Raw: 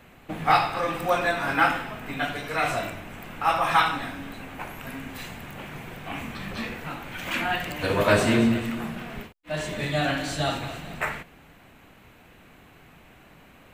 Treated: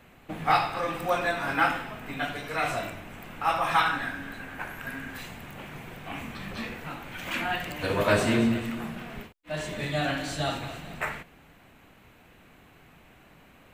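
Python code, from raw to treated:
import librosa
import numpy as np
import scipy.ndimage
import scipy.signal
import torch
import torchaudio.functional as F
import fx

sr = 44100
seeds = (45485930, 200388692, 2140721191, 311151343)

y = fx.peak_eq(x, sr, hz=1600.0, db=11.0, octaves=0.32, at=(3.85, 5.19))
y = y * 10.0 ** (-3.0 / 20.0)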